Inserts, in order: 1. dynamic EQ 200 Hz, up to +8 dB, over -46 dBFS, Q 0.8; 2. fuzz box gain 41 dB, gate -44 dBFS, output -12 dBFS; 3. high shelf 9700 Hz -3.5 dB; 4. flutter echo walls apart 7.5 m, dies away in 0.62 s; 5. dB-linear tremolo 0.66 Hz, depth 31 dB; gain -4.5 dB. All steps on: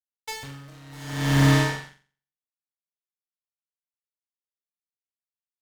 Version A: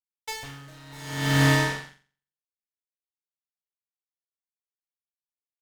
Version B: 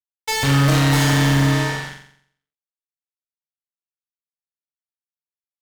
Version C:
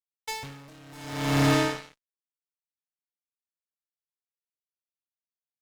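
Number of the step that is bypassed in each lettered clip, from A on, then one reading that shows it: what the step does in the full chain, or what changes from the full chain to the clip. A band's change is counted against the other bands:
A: 1, crest factor change +1.5 dB; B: 5, momentary loudness spread change -10 LU; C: 4, crest factor change -3.0 dB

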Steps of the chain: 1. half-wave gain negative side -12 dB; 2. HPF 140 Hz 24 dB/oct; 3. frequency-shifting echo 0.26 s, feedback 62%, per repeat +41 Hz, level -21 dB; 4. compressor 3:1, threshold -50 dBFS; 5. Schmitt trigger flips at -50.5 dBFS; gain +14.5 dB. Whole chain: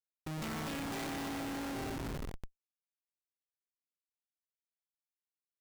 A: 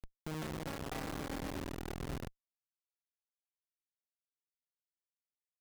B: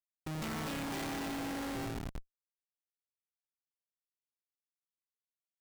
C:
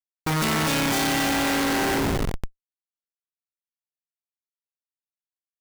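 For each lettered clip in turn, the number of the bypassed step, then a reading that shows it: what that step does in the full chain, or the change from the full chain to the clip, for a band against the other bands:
2, 125 Hz band +3.5 dB; 3, momentary loudness spread change -2 LU; 4, mean gain reduction 8.0 dB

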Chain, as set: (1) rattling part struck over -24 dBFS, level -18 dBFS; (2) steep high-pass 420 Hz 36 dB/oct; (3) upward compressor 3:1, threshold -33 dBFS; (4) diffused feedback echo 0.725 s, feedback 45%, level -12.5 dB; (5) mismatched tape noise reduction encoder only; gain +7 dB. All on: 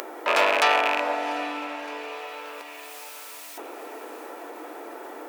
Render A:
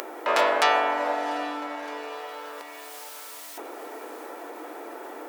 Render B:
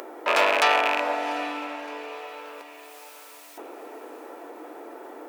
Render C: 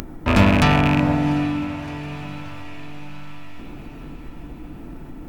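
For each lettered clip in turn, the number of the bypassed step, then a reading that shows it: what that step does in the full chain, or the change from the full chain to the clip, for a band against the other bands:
1, 2 kHz band -3.0 dB; 5, momentary loudness spread change +4 LU; 2, 250 Hz band +18.5 dB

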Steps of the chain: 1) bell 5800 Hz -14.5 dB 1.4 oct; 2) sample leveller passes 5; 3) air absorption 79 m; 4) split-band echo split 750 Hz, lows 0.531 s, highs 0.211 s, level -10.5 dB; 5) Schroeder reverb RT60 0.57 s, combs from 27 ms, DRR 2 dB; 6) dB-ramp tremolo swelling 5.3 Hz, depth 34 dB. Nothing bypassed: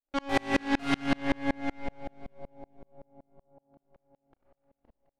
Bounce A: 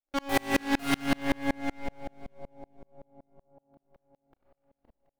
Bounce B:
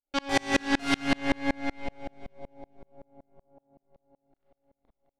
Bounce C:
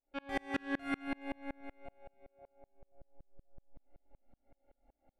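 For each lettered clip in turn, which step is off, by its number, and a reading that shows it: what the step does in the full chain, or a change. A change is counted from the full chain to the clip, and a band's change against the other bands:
3, 8 kHz band +7.0 dB; 1, 8 kHz band +7.5 dB; 2, crest factor change +2.5 dB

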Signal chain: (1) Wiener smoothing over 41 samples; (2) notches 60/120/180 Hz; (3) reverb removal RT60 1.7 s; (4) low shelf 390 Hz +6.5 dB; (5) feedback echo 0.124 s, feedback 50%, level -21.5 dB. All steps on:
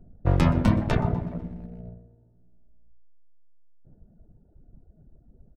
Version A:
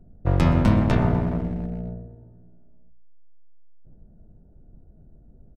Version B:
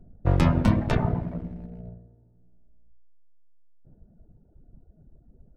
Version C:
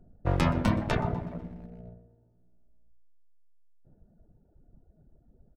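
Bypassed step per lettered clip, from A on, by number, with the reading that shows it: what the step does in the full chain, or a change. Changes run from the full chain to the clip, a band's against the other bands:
3, momentary loudness spread change -5 LU; 5, echo-to-direct -20.5 dB to none; 4, 125 Hz band -5.0 dB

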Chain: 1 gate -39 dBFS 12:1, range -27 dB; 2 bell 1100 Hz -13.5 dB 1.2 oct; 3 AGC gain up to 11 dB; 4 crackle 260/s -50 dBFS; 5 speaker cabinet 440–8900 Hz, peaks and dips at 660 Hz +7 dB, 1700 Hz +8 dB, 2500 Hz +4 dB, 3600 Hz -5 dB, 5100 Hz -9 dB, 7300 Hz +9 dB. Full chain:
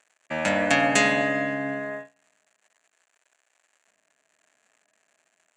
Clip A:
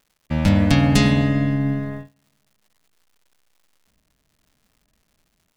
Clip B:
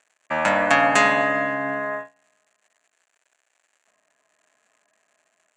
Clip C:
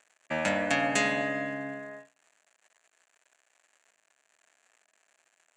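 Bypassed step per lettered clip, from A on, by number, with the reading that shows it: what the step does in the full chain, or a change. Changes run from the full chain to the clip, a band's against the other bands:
5, 125 Hz band +22.5 dB; 2, 1 kHz band +8.0 dB; 3, momentary loudness spread change +2 LU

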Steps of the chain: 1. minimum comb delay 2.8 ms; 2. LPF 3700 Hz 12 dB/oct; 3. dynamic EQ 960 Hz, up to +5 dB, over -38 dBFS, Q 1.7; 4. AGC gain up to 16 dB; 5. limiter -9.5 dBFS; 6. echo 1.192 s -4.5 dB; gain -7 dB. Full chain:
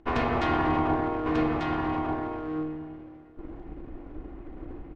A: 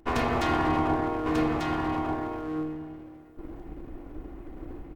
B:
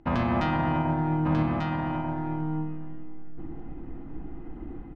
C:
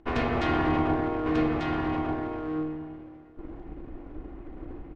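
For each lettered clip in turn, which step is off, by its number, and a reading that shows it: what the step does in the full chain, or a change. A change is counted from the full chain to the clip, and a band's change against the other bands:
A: 2, 4 kHz band +2.5 dB; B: 1, 125 Hz band +9.5 dB; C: 3, 1 kHz band -3.0 dB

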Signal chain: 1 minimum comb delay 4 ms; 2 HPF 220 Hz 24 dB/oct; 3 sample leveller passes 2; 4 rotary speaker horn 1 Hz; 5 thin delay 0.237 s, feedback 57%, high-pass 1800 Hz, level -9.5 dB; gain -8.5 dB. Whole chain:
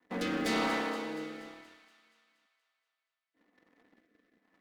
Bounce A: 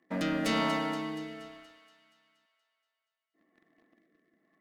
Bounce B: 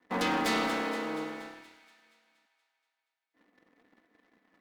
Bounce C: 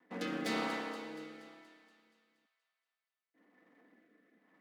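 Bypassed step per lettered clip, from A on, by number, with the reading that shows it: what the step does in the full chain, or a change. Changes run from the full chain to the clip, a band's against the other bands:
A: 1, 125 Hz band +5.5 dB; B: 4, 1 kHz band +2.0 dB; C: 3, crest factor change +3.0 dB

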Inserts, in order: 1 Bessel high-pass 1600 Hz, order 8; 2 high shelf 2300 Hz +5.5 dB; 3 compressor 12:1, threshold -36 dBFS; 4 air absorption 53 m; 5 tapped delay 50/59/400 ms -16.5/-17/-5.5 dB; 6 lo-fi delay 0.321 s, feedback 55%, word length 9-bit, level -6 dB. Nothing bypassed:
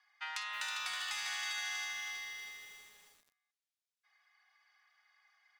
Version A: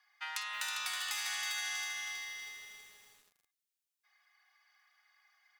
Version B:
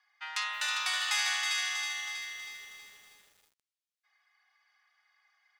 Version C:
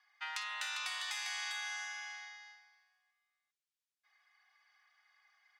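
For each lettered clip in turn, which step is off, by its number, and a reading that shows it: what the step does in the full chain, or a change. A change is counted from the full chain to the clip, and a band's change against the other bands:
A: 4, 8 kHz band +3.5 dB; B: 3, mean gain reduction 4.0 dB; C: 6, momentary loudness spread change -2 LU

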